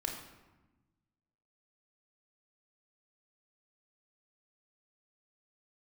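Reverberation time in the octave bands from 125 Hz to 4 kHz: 1.8, 1.7, 1.1, 1.1, 0.95, 0.70 seconds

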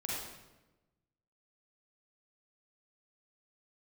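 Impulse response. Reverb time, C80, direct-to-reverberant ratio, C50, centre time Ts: 1.1 s, 1.5 dB, −5.5 dB, −3.0 dB, 84 ms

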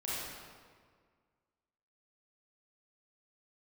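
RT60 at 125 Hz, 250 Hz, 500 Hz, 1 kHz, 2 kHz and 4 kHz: 1.9, 2.0, 1.9, 1.7, 1.5, 1.2 seconds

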